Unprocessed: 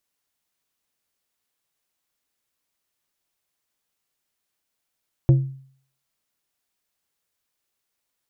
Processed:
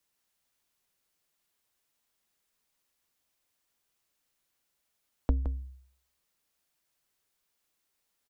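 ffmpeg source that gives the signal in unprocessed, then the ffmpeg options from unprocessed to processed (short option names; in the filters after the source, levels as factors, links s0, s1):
-f lavfi -i "aevalsrc='0.376*pow(10,-3*t/0.54)*sin(2*PI*134*t)+0.119*pow(10,-3*t/0.284)*sin(2*PI*335*t)+0.0376*pow(10,-3*t/0.205)*sin(2*PI*536*t)+0.0119*pow(10,-3*t/0.175)*sin(2*PI*670*t)+0.00376*pow(10,-3*t/0.146)*sin(2*PI*871*t)':d=0.89:s=44100"
-filter_complex "[0:a]acompressor=threshold=0.0631:ratio=6,afreqshift=-69,asplit=2[s0][s1];[s1]aecho=0:1:167:0.335[s2];[s0][s2]amix=inputs=2:normalize=0"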